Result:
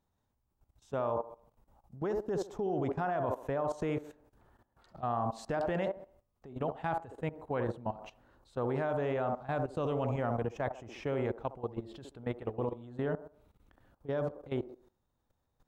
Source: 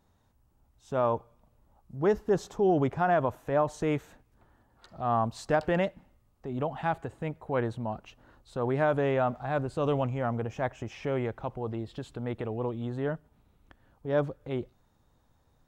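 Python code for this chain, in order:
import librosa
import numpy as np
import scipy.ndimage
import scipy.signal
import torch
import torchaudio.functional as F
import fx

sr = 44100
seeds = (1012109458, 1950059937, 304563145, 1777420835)

y = fx.echo_wet_bandpass(x, sr, ms=67, feedback_pct=38, hz=550.0, wet_db=-4.5)
y = fx.level_steps(y, sr, step_db=16)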